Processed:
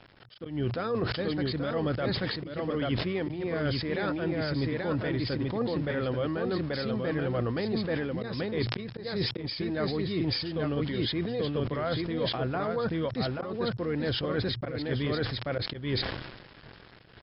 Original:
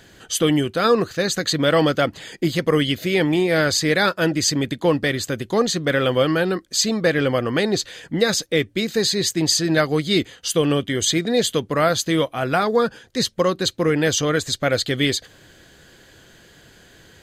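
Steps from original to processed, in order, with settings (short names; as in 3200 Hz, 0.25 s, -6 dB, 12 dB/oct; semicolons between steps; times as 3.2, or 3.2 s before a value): high shelf 2400 Hz -12 dB; echo 0.834 s -4 dB; reverse; compressor 16:1, threshold -27 dBFS, peak gain reduction 17 dB; reverse; harmoniser -12 st -13 dB; sample gate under -46 dBFS; auto swell 0.184 s; brick-wall FIR low-pass 5400 Hz; bell 120 Hz +6 dB 0.29 oct; sustainer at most 49 dB/s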